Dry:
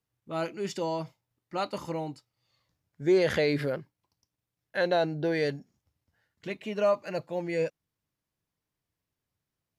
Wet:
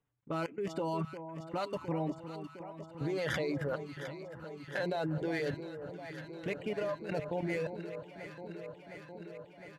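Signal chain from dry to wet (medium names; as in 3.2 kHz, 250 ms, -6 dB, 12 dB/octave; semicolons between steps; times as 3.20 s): local Wiener filter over 9 samples; reverb removal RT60 0.79 s; hum notches 50/100/150 Hz; comb 6.9 ms, depth 41%; in parallel at -1 dB: peak limiter -22 dBFS, peak gain reduction 7.5 dB; on the sum: compression 2.5:1, threshold -25 dBFS, peak gain reduction 6 dB; resampled via 32 kHz; level held to a coarse grid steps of 17 dB; echo whose repeats swap between lows and highs 355 ms, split 1.1 kHz, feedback 87%, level -9.5 dB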